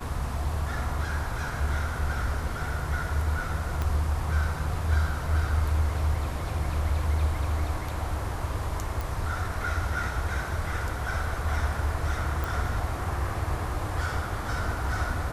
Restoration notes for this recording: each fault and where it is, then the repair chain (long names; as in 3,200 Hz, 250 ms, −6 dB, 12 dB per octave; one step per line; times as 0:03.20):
0:03.82: click −16 dBFS
0:09.01: click
0:12.44: click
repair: click removal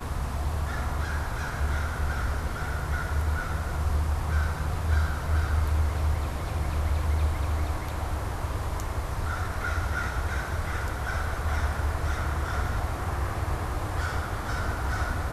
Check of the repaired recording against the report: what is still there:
0:03.82: click
0:12.44: click